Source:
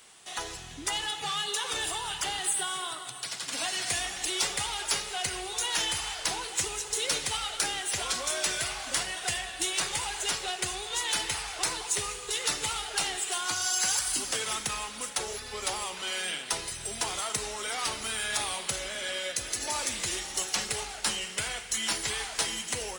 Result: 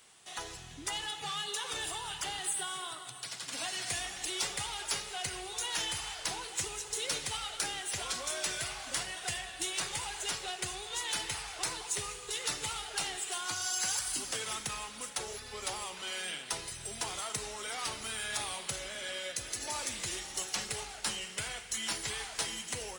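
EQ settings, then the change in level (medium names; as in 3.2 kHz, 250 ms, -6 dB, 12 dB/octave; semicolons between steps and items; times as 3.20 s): peaking EQ 120 Hz +4 dB 0.9 oct; -5.5 dB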